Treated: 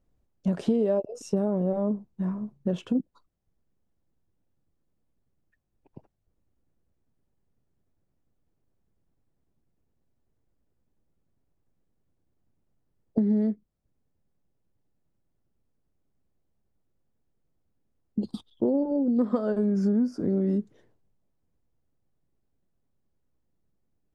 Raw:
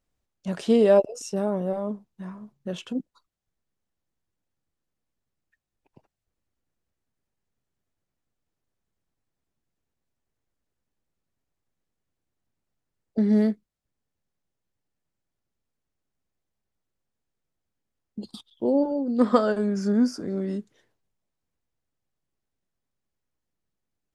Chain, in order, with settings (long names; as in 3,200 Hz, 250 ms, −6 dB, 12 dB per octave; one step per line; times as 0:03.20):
tilt shelving filter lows +8 dB
downward compressor 8 to 1, threshold −23 dBFS, peak gain reduction 15 dB
level +1.5 dB